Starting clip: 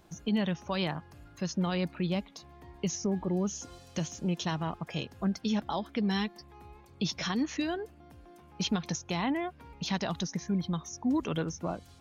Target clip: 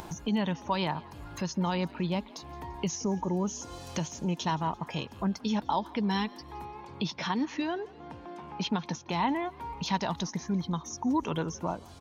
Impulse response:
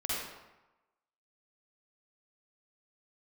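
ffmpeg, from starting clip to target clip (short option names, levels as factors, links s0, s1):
-filter_complex "[0:a]equalizer=f=930:t=o:w=0.25:g=12,acompressor=mode=upward:threshold=0.0282:ratio=2.5,asplit=3[s0][s1][s2];[s0]afade=t=out:st=6.64:d=0.02[s3];[s1]highpass=120,lowpass=4400,afade=t=in:st=6.64:d=0.02,afade=t=out:st=9.11:d=0.02[s4];[s2]afade=t=in:st=9.11:d=0.02[s5];[s3][s4][s5]amix=inputs=3:normalize=0,asplit=5[s6][s7][s8][s9][s10];[s7]adelay=170,afreqshift=57,volume=0.075[s11];[s8]adelay=340,afreqshift=114,volume=0.0412[s12];[s9]adelay=510,afreqshift=171,volume=0.0226[s13];[s10]adelay=680,afreqshift=228,volume=0.0124[s14];[s6][s11][s12][s13][s14]amix=inputs=5:normalize=0"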